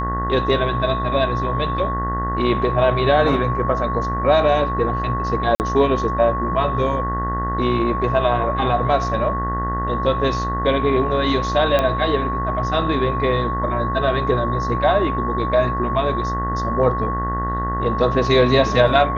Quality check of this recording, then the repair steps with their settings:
mains buzz 60 Hz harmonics 33 −25 dBFS
whistle 1,100 Hz −23 dBFS
0:05.55–0:05.60: drop-out 49 ms
0:11.79: click −7 dBFS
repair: click removal
hum removal 60 Hz, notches 33
notch filter 1,100 Hz, Q 30
repair the gap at 0:05.55, 49 ms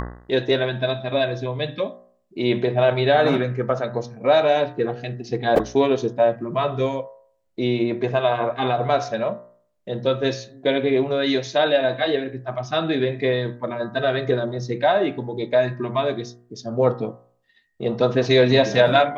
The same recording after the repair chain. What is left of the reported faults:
none of them is left

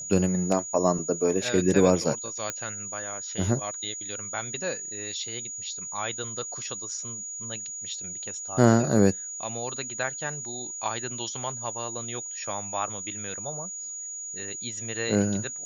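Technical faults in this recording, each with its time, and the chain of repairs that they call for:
whistle 6,800 Hz −34 dBFS
0:02.50: click −14 dBFS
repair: click removal
notch filter 6,800 Hz, Q 30

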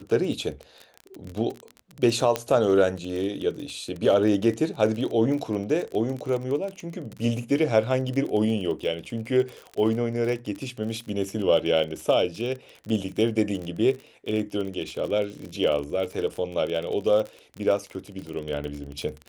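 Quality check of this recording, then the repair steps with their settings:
surface crackle 32 per second −30 dBFS
0:02.36: click −10 dBFS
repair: click removal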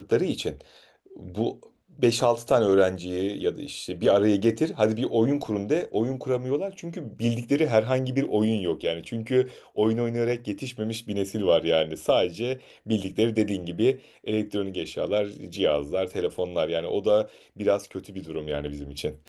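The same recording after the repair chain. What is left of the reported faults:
none of them is left

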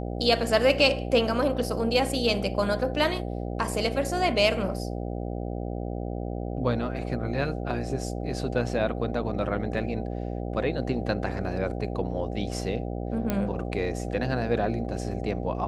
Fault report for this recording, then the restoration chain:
mains buzz 60 Hz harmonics 13 −32 dBFS
0:13.30: click −12 dBFS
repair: click removal
hum removal 60 Hz, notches 13

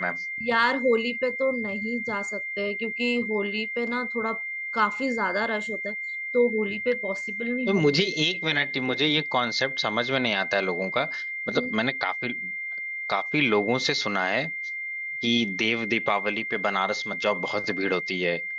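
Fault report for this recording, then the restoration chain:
whistle 2,100 Hz −30 dBFS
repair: notch filter 2,100 Hz, Q 30

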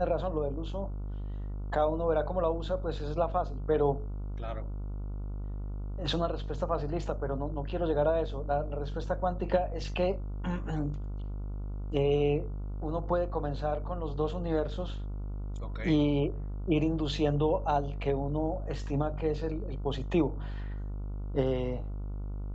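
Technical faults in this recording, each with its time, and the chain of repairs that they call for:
mains buzz 50 Hz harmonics 29 −36 dBFS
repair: hum removal 50 Hz, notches 29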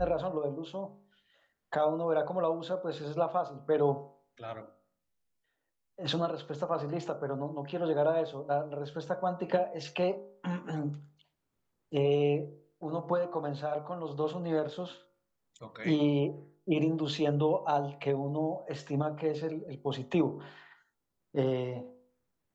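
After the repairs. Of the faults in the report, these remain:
none of them is left

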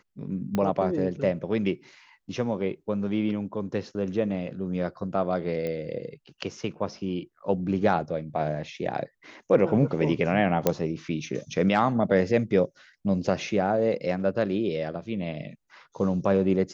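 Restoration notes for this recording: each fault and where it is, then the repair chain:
0:00.55: click −14 dBFS
0:05.67: click −20 dBFS
0:10.67: click −7 dBFS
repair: click removal

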